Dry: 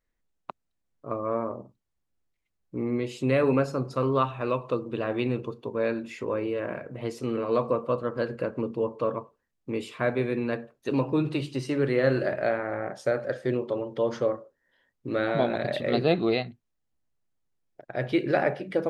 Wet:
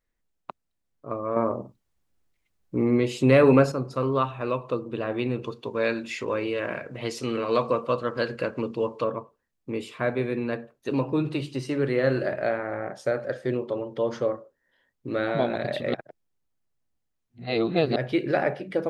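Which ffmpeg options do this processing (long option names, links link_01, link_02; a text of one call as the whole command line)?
ffmpeg -i in.wav -filter_complex "[0:a]asettb=1/sr,asplit=3[link_01][link_02][link_03];[link_01]atrim=end=1.364[link_04];[link_02]atrim=start=1.36:end=3.72,asetpts=PTS-STARTPTS,afade=type=in:duration=0.004:curve=qsin,afade=type=out:start_time=2.356:duration=0.004:curve=qsin,acontrast=65[link_05];[link_03]atrim=start=3.716[link_06];[link_04][link_05]acrossfade=duration=0.004:curve1=hsin:curve2=qsin[link_07];[link_07][link_06]acrossfade=duration=0.004:curve1=qsin:curve2=hsin,asplit=3[link_08][link_09][link_10];[link_08]afade=type=out:start_time=5.41:duration=0.02[link_11];[link_09]equalizer=frequency=4300:width=0.37:gain=10.5,afade=type=in:start_time=5.41:duration=0.02,afade=type=out:start_time=9.03:duration=0.02[link_12];[link_10]afade=type=in:start_time=9.03:duration=0.02[link_13];[link_11][link_12][link_13]amix=inputs=3:normalize=0,asplit=3[link_14][link_15][link_16];[link_14]atrim=end=15.942[link_17];[link_15]atrim=start=15.938:end=17.962,asetpts=PTS-STARTPTS,areverse[link_18];[link_16]atrim=start=17.958[link_19];[link_17][link_18]acrossfade=duration=0.004:curve1=hsin:curve2=hsin[link_20];[link_20][link_19]acrossfade=duration=0.004:curve1=hsin:curve2=hsin" out.wav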